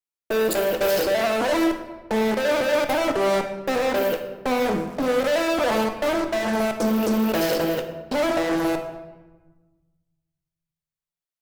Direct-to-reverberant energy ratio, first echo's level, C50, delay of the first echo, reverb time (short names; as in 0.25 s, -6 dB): 5.5 dB, none, 7.5 dB, none, 1.2 s